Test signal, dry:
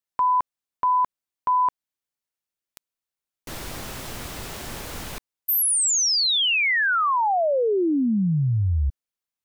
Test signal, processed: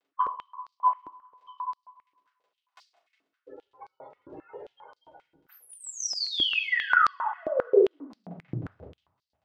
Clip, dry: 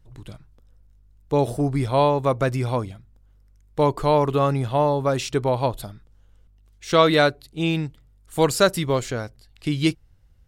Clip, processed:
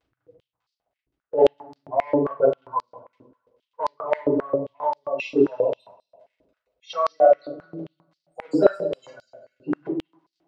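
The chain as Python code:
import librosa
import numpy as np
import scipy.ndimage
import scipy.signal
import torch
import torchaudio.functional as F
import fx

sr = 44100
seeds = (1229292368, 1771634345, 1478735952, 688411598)

p1 = fx.spec_gate(x, sr, threshold_db=-10, keep='strong')
p2 = fx.env_flanger(p1, sr, rest_ms=2.8, full_db=-15.5)
p3 = fx.dmg_crackle(p2, sr, seeds[0], per_s=18.0, level_db=-49.0)
p4 = np.clip(p3, -10.0 ** (-16.5 / 20.0), 10.0 ** (-16.5 / 20.0))
p5 = p3 + (p4 * librosa.db_to_amplitude(-10.0))
p6 = fx.chopper(p5, sr, hz=5.8, depth_pct=60, duty_pct=20)
p7 = fx.air_absorb(p6, sr, metres=160.0)
p8 = p7 + fx.echo_heads(p7, sr, ms=97, heads='first and second', feedback_pct=45, wet_db=-19.5, dry=0)
p9 = fx.room_shoebox(p8, sr, seeds[1], volume_m3=220.0, walls='furnished', distance_m=5.2)
p10 = fx.filter_held_highpass(p9, sr, hz=7.5, low_hz=320.0, high_hz=4600.0)
y = p10 * librosa.db_to_amplitude(-7.5)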